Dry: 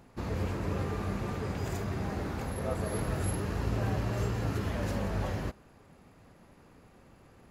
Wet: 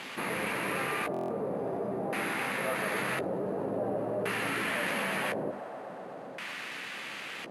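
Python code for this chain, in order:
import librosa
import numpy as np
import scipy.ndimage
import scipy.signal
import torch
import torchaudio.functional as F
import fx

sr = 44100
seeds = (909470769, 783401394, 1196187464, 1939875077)

p1 = fx.quant_dither(x, sr, seeds[0], bits=8, dither='triangular')
p2 = x + (p1 * librosa.db_to_amplitude(-4.0))
p3 = scipy.signal.sosfilt(scipy.signal.butter(4, 160.0, 'highpass', fs=sr, output='sos'), p2)
p4 = fx.hum_notches(p3, sr, base_hz=50, count=8)
p5 = p4 + fx.echo_wet_highpass(p4, sr, ms=125, feedback_pct=83, hz=1500.0, wet_db=-5.0, dry=0)
p6 = (np.kron(scipy.signal.resample_poly(p5, 1, 4), np.eye(4)[0]) * 4)[:len(p5)]
p7 = fx.high_shelf(p6, sr, hz=3200.0, db=11.5)
p8 = fx.filter_lfo_lowpass(p7, sr, shape='square', hz=0.47, low_hz=590.0, high_hz=2300.0, q=2.0)
p9 = fx.low_shelf(p8, sr, hz=380.0, db=-6.0)
p10 = fx.doubler(p9, sr, ms=15.0, db=-11.5)
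p11 = fx.buffer_glitch(p10, sr, at_s=(1.12,), block=1024, repeats=7)
p12 = fx.env_flatten(p11, sr, amount_pct=50)
y = p12 * librosa.db_to_amplitude(-3.0)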